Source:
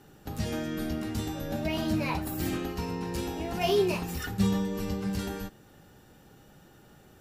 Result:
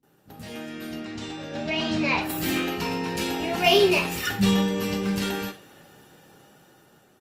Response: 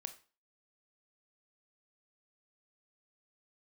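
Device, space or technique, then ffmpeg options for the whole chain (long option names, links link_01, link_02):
far-field microphone of a smart speaker: -filter_complex "[0:a]asettb=1/sr,asplit=3[link_01][link_02][link_03];[link_01]atrim=end=0.974[link_04];[link_02]atrim=start=0.97:end=2.19,asetpts=PTS-STARTPTS,afade=type=in:duration=0.004:curve=qsin,afade=type=out:start_time=1.216:duration=0.004:curve=qsin,lowpass=frequency=7200:width=0.5412,lowpass=frequency=7200:width=1.3066[link_05];[link_03]atrim=start=2.186[link_06];[link_04][link_05]acrossfade=duration=0.004:curve1=hsin:curve2=qsin[link_07];[link_07][link_06]acrossfade=duration=0.004:curve1=qsin:curve2=hsin,acrossover=split=220[link_08][link_09];[link_09]adelay=30[link_10];[link_08][link_10]amix=inputs=2:normalize=0,adynamicequalizer=threshold=0.00282:dfrequency=2700:dqfactor=0.99:tfrequency=2700:tqfactor=0.99:attack=5:release=100:ratio=0.375:range=3.5:mode=boostabove:tftype=bell[link_11];[1:a]atrim=start_sample=2205[link_12];[link_11][link_12]afir=irnorm=-1:irlink=0,highpass=160,dynaudnorm=framelen=700:gausssize=5:maxgain=10.5dB" -ar 48000 -c:a libopus -b:a 32k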